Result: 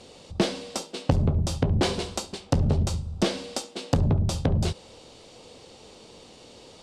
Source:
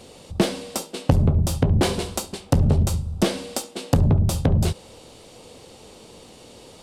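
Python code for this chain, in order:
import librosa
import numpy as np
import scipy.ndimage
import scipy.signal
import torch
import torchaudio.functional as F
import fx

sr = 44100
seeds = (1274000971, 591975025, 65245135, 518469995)

y = scipy.signal.sosfilt(scipy.signal.butter(2, 5400.0, 'lowpass', fs=sr, output='sos'), x)
y = fx.bass_treble(y, sr, bass_db=-2, treble_db=6)
y = F.gain(torch.from_numpy(y), -3.0).numpy()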